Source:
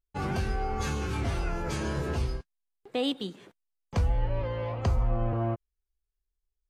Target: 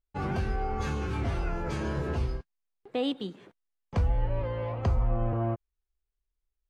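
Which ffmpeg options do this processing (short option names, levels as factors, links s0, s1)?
-af "highshelf=f=4400:g=-11.5"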